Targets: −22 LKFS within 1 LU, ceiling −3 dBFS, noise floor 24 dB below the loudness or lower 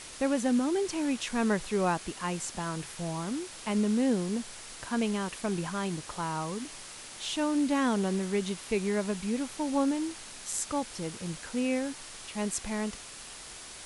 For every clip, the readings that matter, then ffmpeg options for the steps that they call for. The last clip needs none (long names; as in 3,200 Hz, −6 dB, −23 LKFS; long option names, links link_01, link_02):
background noise floor −46 dBFS; target noise floor −56 dBFS; integrated loudness −31.5 LKFS; sample peak −15.0 dBFS; target loudness −22.0 LKFS
→ -af "afftdn=noise_reduction=10:noise_floor=-46"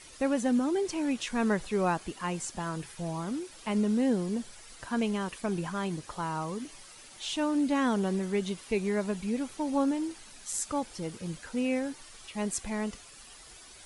background noise floor −51 dBFS; target noise floor −56 dBFS
→ -af "afftdn=noise_reduction=6:noise_floor=-51"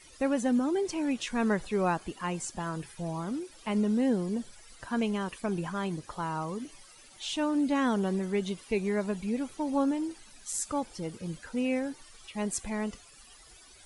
background noise floor −54 dBFS; target noise floor −56 dBFS
→ -af "afftdn=noise_reduction=6:noise_floor=-54"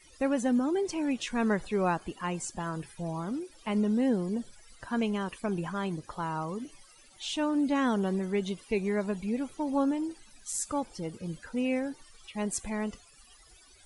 background noise floor −57 dBFS; integrated loudness −31.5 LKFS; sample peak −16.0 dBFS; target loudness −22.0 LKFS
→ -af "volume=9.5dB"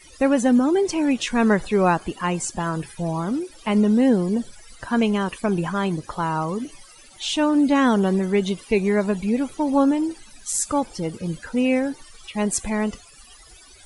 integrated loudness −22.0 LKFS; sample peak −6.5 dBFS; background noise floor −48 dBFS